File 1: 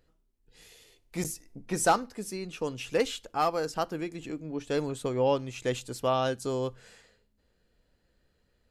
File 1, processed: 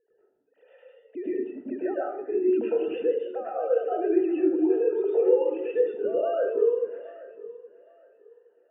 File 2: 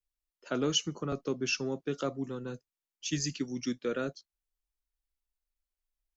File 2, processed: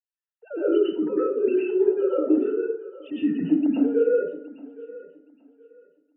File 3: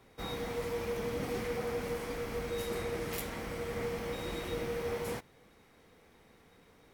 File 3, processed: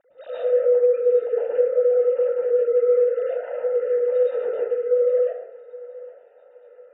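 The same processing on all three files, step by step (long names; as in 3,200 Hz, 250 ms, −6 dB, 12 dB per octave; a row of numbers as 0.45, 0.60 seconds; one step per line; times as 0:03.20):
three sine waves on the formant tracks
low-shelf EQ 250 Hz −10.5 dB
downward compressor, threshold −36 dBFS
brickwall limiter −36 dBFS
moving average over 40 samples
feedback echo with a high-pass in the loop 819 ms, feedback 27%, high-pass 210 Hz, level −18 dB
dense smooth reverb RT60 0.63 s, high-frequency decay 0.5×, pre-delay 95 ms, DRR −9 dB
normalise the peak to −9 dBFS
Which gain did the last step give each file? +12.5, +14.5, +14.0 decibels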